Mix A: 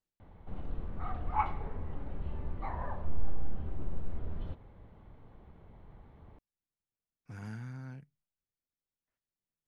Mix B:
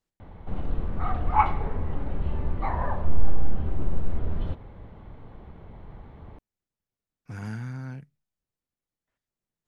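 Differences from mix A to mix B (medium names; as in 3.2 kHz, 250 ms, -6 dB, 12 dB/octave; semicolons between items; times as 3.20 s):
speech +8.0 dB; background +10.0 dB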